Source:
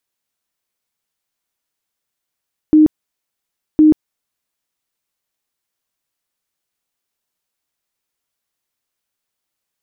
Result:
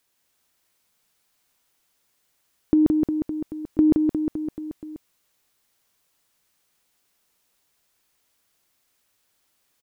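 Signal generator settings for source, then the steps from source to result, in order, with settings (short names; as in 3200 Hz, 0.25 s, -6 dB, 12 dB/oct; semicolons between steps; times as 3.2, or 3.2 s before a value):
tone bursts 308 Hz, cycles 41, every 1.06 s, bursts 2, -5 dBFS
negative-ratio compressor -16 dBFS, ratio -1; reverse bouncing-ball echo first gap 0.17 s, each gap 1.1×, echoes 5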